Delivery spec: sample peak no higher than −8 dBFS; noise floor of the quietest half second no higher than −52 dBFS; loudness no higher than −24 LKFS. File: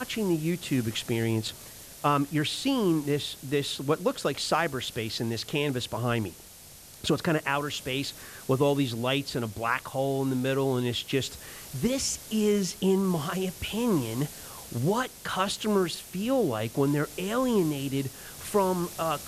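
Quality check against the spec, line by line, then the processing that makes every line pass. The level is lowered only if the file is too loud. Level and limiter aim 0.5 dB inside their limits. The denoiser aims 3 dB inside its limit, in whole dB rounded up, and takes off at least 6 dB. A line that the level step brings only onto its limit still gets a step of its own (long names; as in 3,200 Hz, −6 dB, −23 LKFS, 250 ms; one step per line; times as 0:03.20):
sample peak −11.5 dBFS: in spec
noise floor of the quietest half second −49 dBFS: out of spec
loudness −28.5 LKFS: in spec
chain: broadband denoise 6 dB, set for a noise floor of −49 dBFS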